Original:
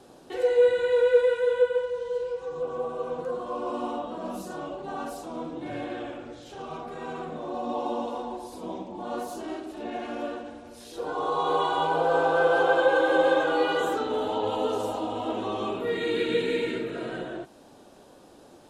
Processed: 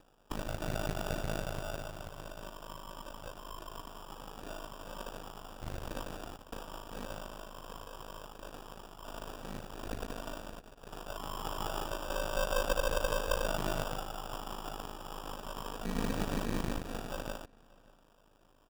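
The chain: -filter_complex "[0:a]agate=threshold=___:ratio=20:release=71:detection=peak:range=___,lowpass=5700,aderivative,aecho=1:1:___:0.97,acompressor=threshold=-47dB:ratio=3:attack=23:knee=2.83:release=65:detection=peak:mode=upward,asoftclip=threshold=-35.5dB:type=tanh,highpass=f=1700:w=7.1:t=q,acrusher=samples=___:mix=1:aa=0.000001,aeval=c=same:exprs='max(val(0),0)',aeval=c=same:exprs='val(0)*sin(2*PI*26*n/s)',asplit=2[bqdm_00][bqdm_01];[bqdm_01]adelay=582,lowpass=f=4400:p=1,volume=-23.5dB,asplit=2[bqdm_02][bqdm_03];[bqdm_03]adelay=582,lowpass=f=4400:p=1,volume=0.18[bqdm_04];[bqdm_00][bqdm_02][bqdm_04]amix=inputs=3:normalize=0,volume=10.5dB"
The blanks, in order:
-44dB, -53dB, 0.9, 21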